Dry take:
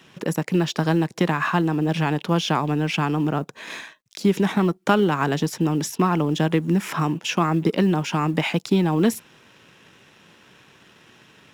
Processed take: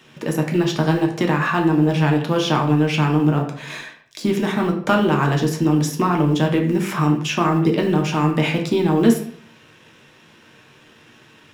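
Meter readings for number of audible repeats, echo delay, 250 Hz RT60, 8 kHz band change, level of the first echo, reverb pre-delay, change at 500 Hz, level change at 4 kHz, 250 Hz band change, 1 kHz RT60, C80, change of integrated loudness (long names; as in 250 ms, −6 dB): no echo audible, no echo audible, 0.60 s, +1.0 dB, no echo audible, 3 ms, +3.5 dB, +2.0 dB, +3.5 dB, 0.55 s, 11.0 dB, +3.0 dB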